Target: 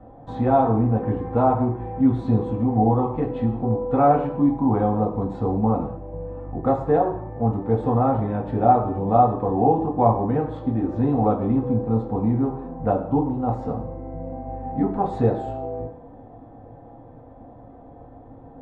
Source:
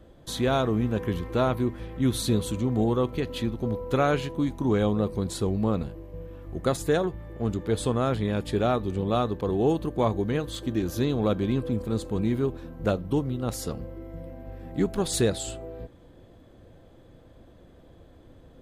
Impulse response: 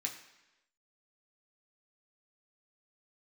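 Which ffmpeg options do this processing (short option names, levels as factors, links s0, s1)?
-filter_complex "[0:a]lowshelf=f=67:g=8.5,asplit=2[s0][s1];[s1]acompressor=threshold=0.0251:ratio=6,volume=1.12[s2];[s0][s2]amix=inputs=2:normalize=0,lowpass=f=850:t=q:w=4.1[s3];[1:a]atrim=start_sample=2205,afade=t=out:st=0.29:d=0.01,atrim=end_sample=13230[s4];[s3][s4]afir=irnorm=-1:irlink=0,volume=1.12"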